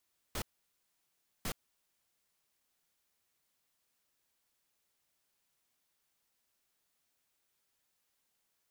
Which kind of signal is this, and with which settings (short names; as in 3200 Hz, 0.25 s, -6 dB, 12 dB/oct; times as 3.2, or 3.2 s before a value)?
noise bursts pink, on 0.07 s, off 1.03 s, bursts 2, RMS -37 dBFS